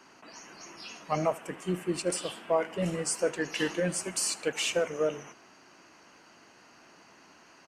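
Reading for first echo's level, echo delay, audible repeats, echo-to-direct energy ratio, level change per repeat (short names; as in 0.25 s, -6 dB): -22.0 dB, 78 ms, 2, -21.0 dB, -5.5 dB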